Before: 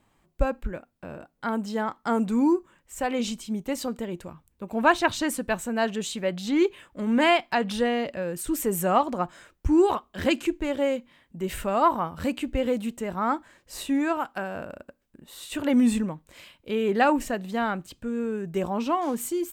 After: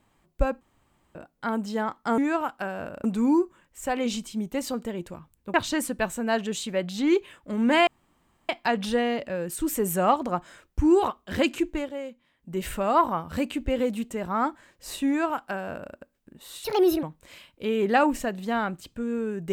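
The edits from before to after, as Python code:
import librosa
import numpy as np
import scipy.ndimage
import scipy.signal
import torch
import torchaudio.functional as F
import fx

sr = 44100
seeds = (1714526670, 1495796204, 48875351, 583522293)

y = fx.edit(x, sr, fx.room_tone_fill(start_s=0.61, length_s=0.54),
    fx.cut(start_s=4.68, length_s=0.35),
    fx.insert_room_tone(at_s=7.36, length_s=0.62),
    fx.fade_down_up(start_s=10.63, length_s=0.74, db=-10.0, fade_s=0.14),
    fx.duplicate(start_s=13.94, length_s=0.86, to_s=2.18),
    fx.speed_span(start_s=15.51, length_s=0.58, speed=1.49), tone=tone)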